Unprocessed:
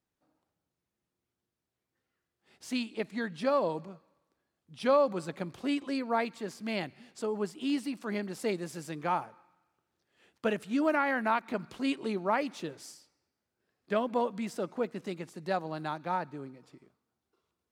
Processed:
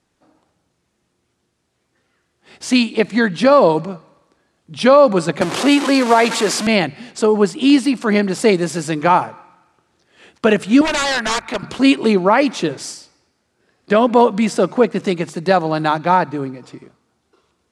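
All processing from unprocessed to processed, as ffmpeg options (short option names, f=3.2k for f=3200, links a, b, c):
-filter_complex "[0:a]asettb=1/sr,asplit=3[a][b][c];[a]atrim=end=5.414[d];[b]atrim=start=5.41:end=6.67,asetpts=PTS-STARTPTS,afade=t=in:d=0.004:c=qsin,afade=t=out:st=1.256:d=0.004:c=qsin,aeval=exprs='val(0)+0.5*0.0188*sgn(val(0))':c=same,highpass=280,acrusher=bits=6:mode=log:mix=0:aa=0.000001[e];[c]atrim=start=6.666[f];[d][e]acrossfade=d=0.004:c1=hsin:c2=qsin[g];[g][f]acrossfade=d=0.004:c1=qsin:c2=hsin,asettb=1/sr,asplit=3[h][i][j];[h]atrim=end=10.814[k];[i]atrim=start=10.81:end=11.63,asetpts=PTS-STARTPTS,afade=t=in:d=0.004:c=qsin,afade=t=out:st=0.816:d=0.004:c=qsin,highpass=f=820:p=1,aeval=exprs='0.0251*(abs(mod(val(0)/0.0251+3,4)-2)-1)':c=same[l];[j]atrim=start=11.626[m];[k][l]acrossfade=d=0.004:c1=hsin:c2=qsin[n];[n][m]acrossfade=d=0.004:c1=qsin:c2=hsin,lowpass=f=10k:w=0.5412,lowpass=f=10k:w=1.3066,bandreject=f=50:t=h:w=6,bandreject=f=100:t=h:w=6,bandreject=f=150:t=h:w=6,alimiter=level_in=20dB:limit=-1dB:release=50:level=0:latency=1,volume=-1dB"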